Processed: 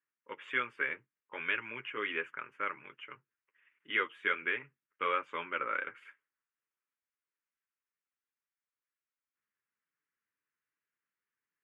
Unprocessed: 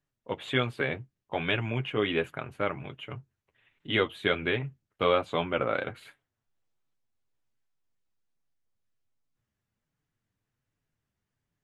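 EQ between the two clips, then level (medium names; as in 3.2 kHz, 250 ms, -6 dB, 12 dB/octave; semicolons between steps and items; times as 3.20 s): high-pass 610 Hz 12 dB/octave; low-pass 3.7 kHz 12 dB/octave; static phaser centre 1.7 kHz, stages 4; 0.0 dB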